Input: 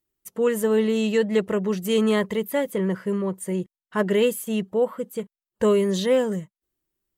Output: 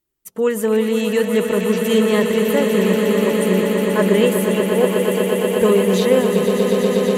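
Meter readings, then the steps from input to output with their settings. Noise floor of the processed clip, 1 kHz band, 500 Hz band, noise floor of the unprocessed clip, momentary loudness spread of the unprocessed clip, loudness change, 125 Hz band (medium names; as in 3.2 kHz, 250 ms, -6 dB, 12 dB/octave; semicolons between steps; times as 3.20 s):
-34 dBFS, +8.0 dB, +7.5 dB, under -85 dBFS, 9 LU, +7.0 dB, +8.0 dB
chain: rattle on loud lows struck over -28 dBFS, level -30 dBFS; vibrato 8.1 Hz 5.9 cents; echo with a slow build-up 121 ms, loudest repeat 8, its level -8.5 dB; trim +3.5 dB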